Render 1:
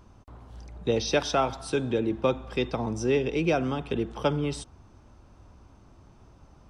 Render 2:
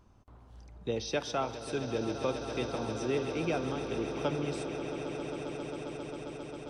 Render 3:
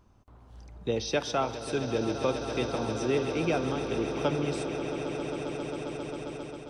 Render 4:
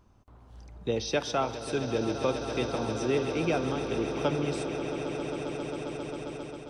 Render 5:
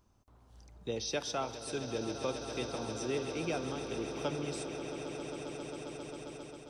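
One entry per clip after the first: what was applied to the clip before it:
echo that builds up and dies away 134 ms, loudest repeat 8, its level −13.5 dB; level −8 dB
automatic gain control gain up to 4 dB
no processing that can be heard
bass and treble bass −1 dB, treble +8 dB; level −7.5 dB

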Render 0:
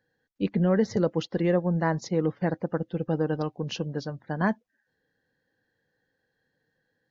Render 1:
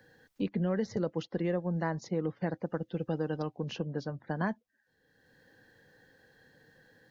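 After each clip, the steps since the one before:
multiband upward and downward compressor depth 70%
level −7 dB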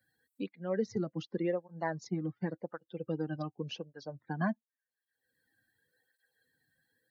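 spectral dynamics exaggerated over time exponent 1.5
through-zero flanger with one copy inverted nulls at 0.89 Hz, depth 2.4 ms
level +3 dB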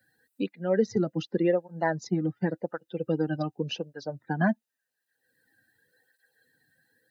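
notch comb filter 1,100 Hz
level +8.5 dB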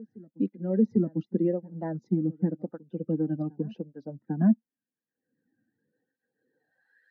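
backwards echo 798 ms −23 dB
band-pass filter sweep 230 Hz → 1,800 Hz, 0:06.35–0:07.01
level +6.5 dB

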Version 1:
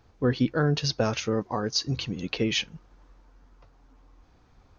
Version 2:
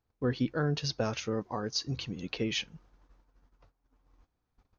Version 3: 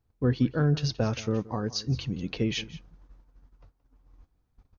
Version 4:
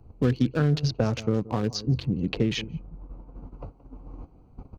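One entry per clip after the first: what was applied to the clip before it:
noise gate −54 dBFS, range −16 dB; level −6 dB
low-shelf EQ 260 Hz +10 dB; single-tap delay 174 ms −18.5 dB
adaptive Wiener filter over 25 samples; multiband upward and downward compressor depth 70%; level +3 dB

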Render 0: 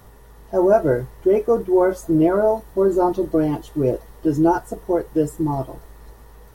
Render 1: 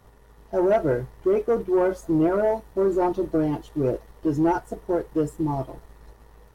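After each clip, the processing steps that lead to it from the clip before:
high-shelf EQ 9,200 Hz −9 dB
leveller curve on the samples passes 1
level −7 dB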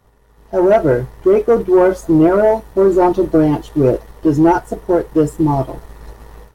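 automatic gain control gain up to 16 dB
level −1.5 dB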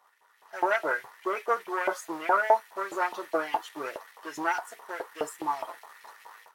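auto-filter high-pass saw up 4.8 Hz 790–2,500 Hz
level −6 dB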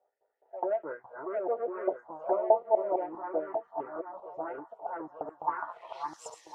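feedback delay that plays each chunk backwards 525 ms, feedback 41%, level −2 dB
phaser swept by the level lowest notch 180 Hz, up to 1,600 Hz, full sweep at −20 dBFS
low-pass filter sweep 660 Hz → 6,100 Hz, 0:05.38–0:06.16
level −4 dB

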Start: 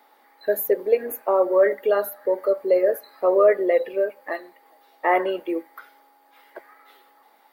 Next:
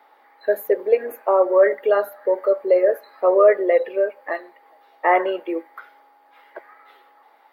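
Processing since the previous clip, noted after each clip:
bass and treble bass −14 dB, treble −13 dB
level +3.5 dB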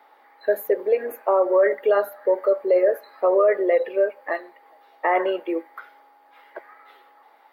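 brickwall limiter −10 dBFS, peak gain reduction 6 dB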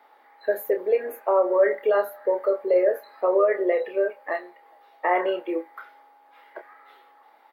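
double-tracking delay 28 ms −7.5 dB
level −2.5 dB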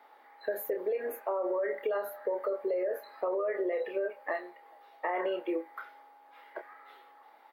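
brickwall limiter −18 dBFS, peak gain reduction 8.5 dB
downward compressor, threshold −26 dBFS, peak gain reduction 5.5 dB
level −2 dB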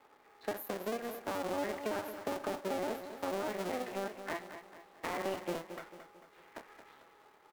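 sub-harmonics by changed cycles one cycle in 2, muted
on a send: repeating echo 223 ms, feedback 45%, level −10.5 dB
on the sum: level −2.5 dB

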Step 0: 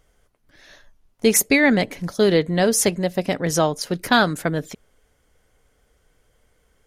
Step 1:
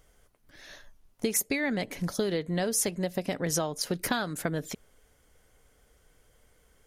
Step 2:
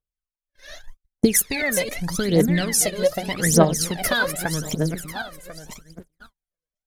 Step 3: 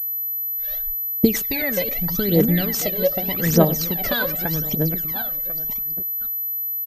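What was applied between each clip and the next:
downward compressor 10 to 1, threshold −25 dBFS, peak gain reduction 14.5 dB; high-shelf EQ 7,400 Hz +5.5 dB; level −1 dB
feedback delay that plays each chunk backwards 522 ms, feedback 43%, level −7 dB; noise gate −49 dBFS, range −45 dB; phase shifter 0.83 Hz, delay 2 ms, feedback 80%; level +4 dB
parametric band 1,400 Hz −5.5 dB 2.1 octaves; far-end echo of a speakerphone 100 ms, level −20 dB; switching amplifier with a slow clock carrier 12,000 Hz; level +1.5 dB

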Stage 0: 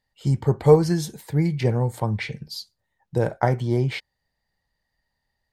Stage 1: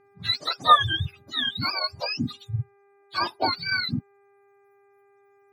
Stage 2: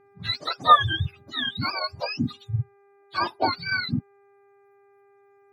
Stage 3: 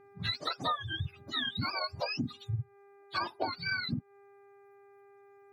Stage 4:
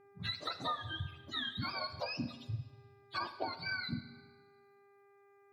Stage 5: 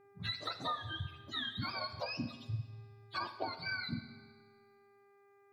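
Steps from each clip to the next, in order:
frequency axis turned over on the octave scale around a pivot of 740 Hz; reverb reduction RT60 1.9 s; hum with harmonics 400 Hz, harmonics 6, −60 dBFS −7 dB per octave
high-shelf EQ 3,500 Hz −9 dB; level +2 dB
downward compressor 12 to 1, threshold −30 dBFS, peak gain reduction 21 dB
convolution reverb RT60 1.3 s, pre-delay 34 ms, DRR 10.5 dB; level −5 dB
tuned comb filter 110 Hz, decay 1.8 s, mix 60%; level +7 dB

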